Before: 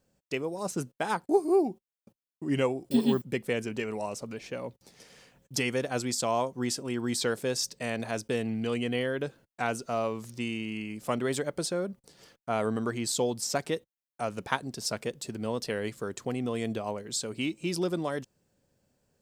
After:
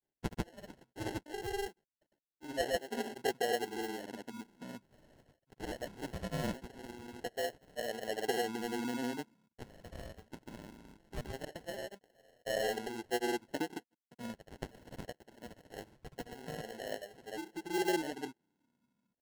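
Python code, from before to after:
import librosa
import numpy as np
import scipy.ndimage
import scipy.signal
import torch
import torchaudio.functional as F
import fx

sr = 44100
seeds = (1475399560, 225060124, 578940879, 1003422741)

y = fx.filter_lfo_bandpass(x, sr, shape='saw_down', hz=0.21, low_hz=210.0, high_hz=3000.0, q=3.4)
y = fx.sample_hold(y, sr, seeds[0], rate_hz=1200.0, jitter_pct=0)
y = fx.granulator(y, sr, seeds[1], grain_ms=100.0, per_s=20.0, spray_ms=100.0, spread_st=0)
y = F.gain(torch.from_numpy(y), 2.0).numpy()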